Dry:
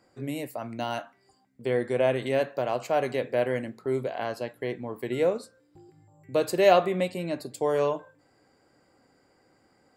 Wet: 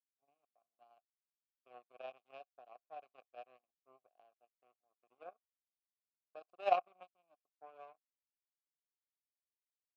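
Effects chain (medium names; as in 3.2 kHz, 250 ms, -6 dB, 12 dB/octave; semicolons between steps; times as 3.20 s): power-law waveshaper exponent 3; vowel filter a; tape noise reduction on one side only decoder only; trim +2.5 dB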